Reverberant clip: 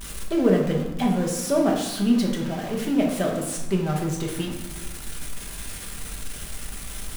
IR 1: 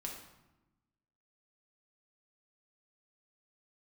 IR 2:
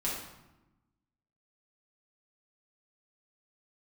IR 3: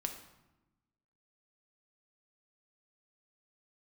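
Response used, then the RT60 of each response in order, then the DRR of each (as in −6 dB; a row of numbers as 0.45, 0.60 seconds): 1; 1.0, 1.0, 1.0 seconds; −1.0, −7.0, 4.0 decibels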